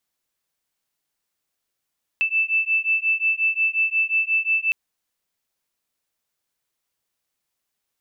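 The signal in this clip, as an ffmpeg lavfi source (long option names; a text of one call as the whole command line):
ffmpeg -f lavfi -i "aevalsrc='0.0841*(sin(2*PI*2640*t)+sin(2*PI*2645.6*t))':duration=2.51:sample_rate=44100" out.wav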